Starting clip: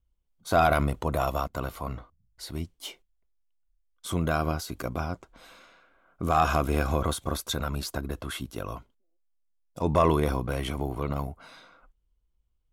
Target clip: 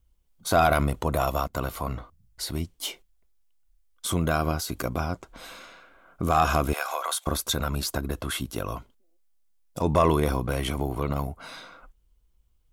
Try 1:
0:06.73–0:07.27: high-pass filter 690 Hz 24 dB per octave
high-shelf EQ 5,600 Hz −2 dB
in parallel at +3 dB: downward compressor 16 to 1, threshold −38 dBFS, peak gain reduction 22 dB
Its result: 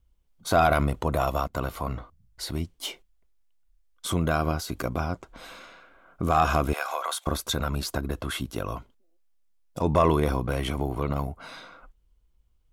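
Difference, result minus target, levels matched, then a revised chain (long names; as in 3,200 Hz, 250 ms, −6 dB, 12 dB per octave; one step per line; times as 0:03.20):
8,000 Hz band −3.5 dB
0:06.73–0:07.27: high-pass filter 690 Hz 24 dB per octave
high-shelf EQ 5,600 Hz +4.5 dB
in parallel at +3 dB: downward compressor 16 to 1, threshold −38 dBFS, peak gain reduction 22 dB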